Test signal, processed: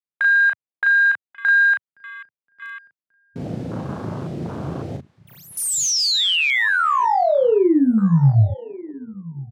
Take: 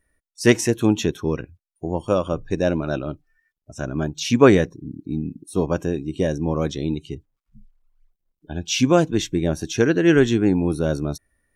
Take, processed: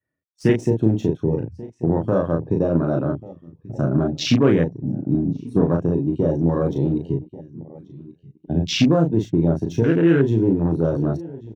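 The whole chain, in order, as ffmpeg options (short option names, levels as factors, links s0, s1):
-filter_complex "[0:a]asplit=2[s0][s1];[s1]acompressor=threshold=0.0562:ratio=16,volume=1.26[s2];[s0][s2]amix=inputs=2:normalize=0,alimiter=limit=0.355:level=0:latency=1:release=84,lowshelf=f=300:g=10.5,asoftclip=type=hard:threshold=0.596,adynamicequalizer=threshold=0.0501:dfrequency=210:dqfactor=1.4:tfrequency=210:tqfactor=1.4:attack=5:release=100:ratio=0.375:range=3.5:mode=cutabove:tftype=bell,highpass=f=110:w=0.5412,highpass=f=110:w=1.3066,asplit=2[s3][s4];[s4]aecho=0:1:1137|2274:0.126|0.0327[s5];[s3][s5]amix=inputs=2:normalize=0,adynamicsmooth=sensitivity=3.5:basefreq=4400,asplit=2[s6][s7];[s7]adelay=36,volume=0.668[s8];[s6][s8]amix=inputs=2:normalize=0,afwtdn=0.0562,volume=0.708"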